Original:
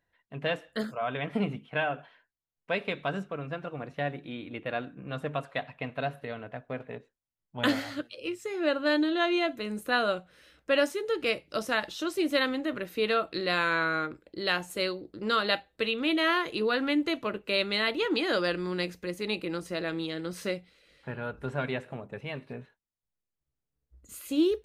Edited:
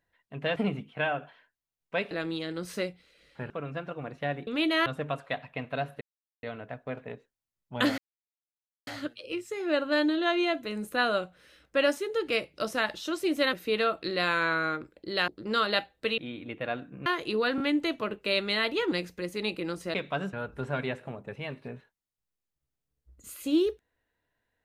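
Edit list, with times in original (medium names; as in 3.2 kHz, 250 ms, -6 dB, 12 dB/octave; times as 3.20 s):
0.56–1.32 s: delete
2.87–3.26 s: swap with 19.79–21.18 s
4.23–5.11 s: swap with 15.94–16.33 s
6.26 s: insert silence 0.42 s
7.81 s: insert silence 0.89 s
12.47–12.83 s: delete
14.58–15.04 s: delete
16.83 s: stutter 0.02 s, 3 plays
18.15–18.77 s: delete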